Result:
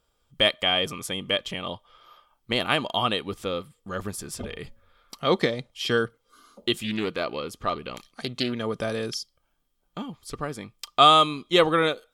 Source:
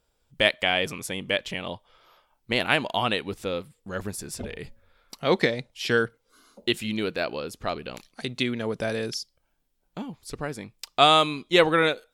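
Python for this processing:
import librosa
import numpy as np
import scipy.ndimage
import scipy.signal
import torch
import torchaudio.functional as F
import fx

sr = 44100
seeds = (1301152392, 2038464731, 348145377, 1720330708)

y = fx.small_body(x, sr, hz=(1200.0, 3200.0), ring_ms=45, db=13)
y = fx.dynamic_eq(y, sr, hz=1900.0, q=0.79, threshold_db=-33.0, ratio=4.0, max_db=-4)
y = fx.doppler_dist(y, sr, depth_ms=0.2, at=(6.83, 8.53))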